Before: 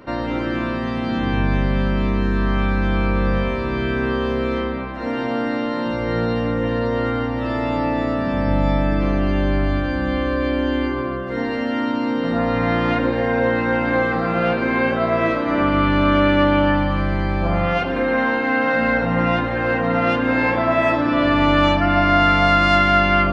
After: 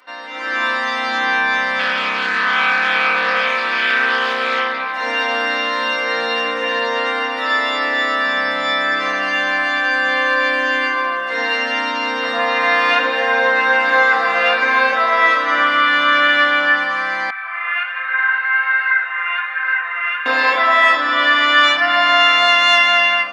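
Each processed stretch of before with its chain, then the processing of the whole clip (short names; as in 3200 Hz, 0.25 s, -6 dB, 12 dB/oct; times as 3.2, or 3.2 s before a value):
1.79–4.95 notch 970 Hz, Q 19 + Doppler distortion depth 0.26 ms
17.3–20.26 Butterworth band-pass 1700 Hz, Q 1.4 + flange 1.3 Hz, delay 6.5 ms, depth 5 ms, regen -58%
whole clip: HPF 1300 Hz 12 dB/oct; comb 4 ms, depth 78%; AGC gain up to 13 dB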